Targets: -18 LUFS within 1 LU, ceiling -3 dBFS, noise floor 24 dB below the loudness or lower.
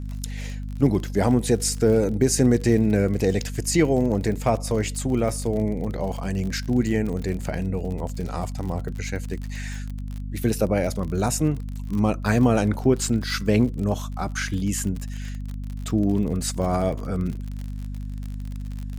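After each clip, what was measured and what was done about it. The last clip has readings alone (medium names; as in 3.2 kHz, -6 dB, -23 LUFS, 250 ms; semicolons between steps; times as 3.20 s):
tick rate 47 per s; hum 50 Hz; highest harmonic 250 Hz; hum level -28 dBFS; loudness -24.0 LUFS; peak level -7.0 dBFS; loudness target -18.0 LUFS
-> de-click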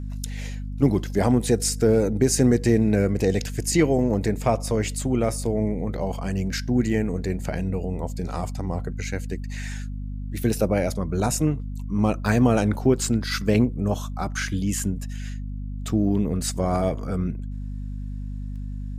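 tick rate 0.26 per s; hum 50 Hz; highest harmonic 250 Hz; hum level -28 dBFS
-> hum notches 50/100/150/200/250 Hz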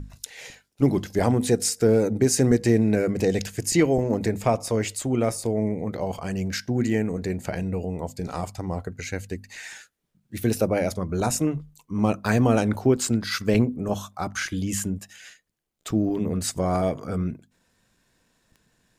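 hum not found; loudness -24.5 LUFS; peak level -7.5 dBFS; loudness target -18.0 LUFS
-> trim +6.5 dB; peak limiter -3 dBFS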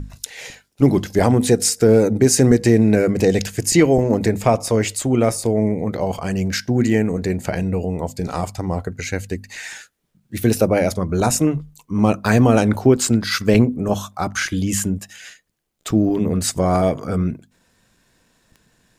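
loudness -18.5 LUFS; peak level -3.0 dBFS; noise floor -63 dBFS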